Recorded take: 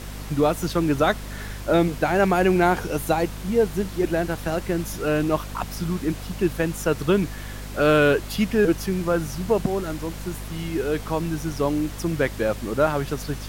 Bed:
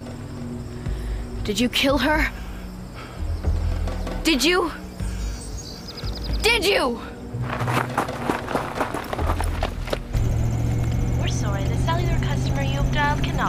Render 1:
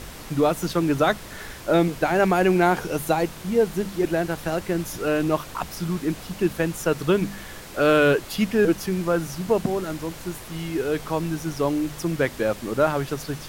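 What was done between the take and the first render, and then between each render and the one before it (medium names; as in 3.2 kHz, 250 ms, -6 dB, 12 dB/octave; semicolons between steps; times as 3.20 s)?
de-hum 50 Hz, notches 5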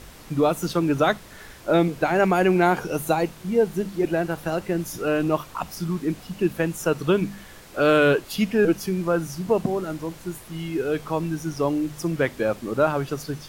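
noise print and reduce 6 dB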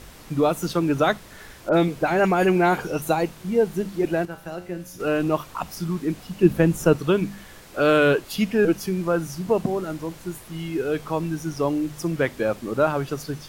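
1.69–3.02 s: phase dispersion highs, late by 48 ms, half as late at 2.8 kHz; 4.25–5.00 s: feedback comb 89 Hz, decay 0.54 s, mix 70%; 6.43–6.96 s: bass shelf 460 Hz +9.5 dB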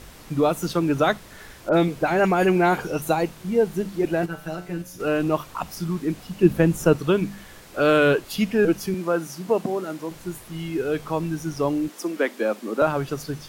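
4.22–4.82 s: comb 6.7 ms, depth 94%; 8.94–10.11 s: high-pass 210 Hz; 11.88–12.82 s: steep high-pass 200 Hz 72 dB/octave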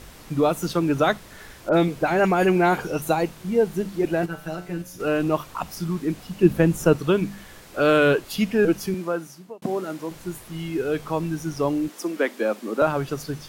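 8.90–9.62 s: fade out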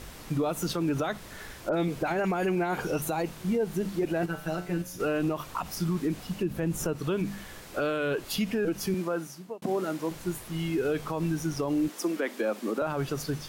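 compression 4:1, threshold -20 dBFS, peak gain reduction 9.5 dB; peak limiter -20 dBFS, peak gain reduction 9.5 dB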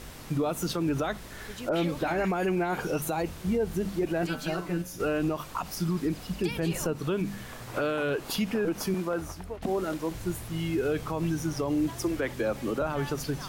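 add bed -20 dB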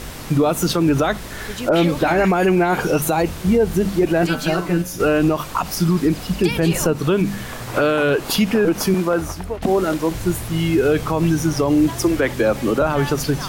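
trim +11.5 dB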